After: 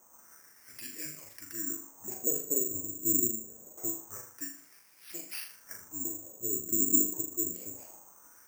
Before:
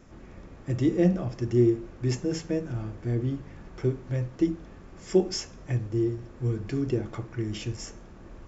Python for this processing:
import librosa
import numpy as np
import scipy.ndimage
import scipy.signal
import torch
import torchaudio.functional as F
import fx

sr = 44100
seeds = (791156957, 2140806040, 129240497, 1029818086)

y = fx.pitch_ramps(x, sr, semitones=-5.0, every_ms=189)
y = fx.wah_lfo(y, sr, hz=0.25, low_hz=320.0, high_hz=2400.0, q=3.1)
y = fx.room_flutter(y, sr, wall_m=6.8, rt60_s=0.42)
y = (np.kron(y[::6], np.eye(6)[0]) * 6)[:len(y)]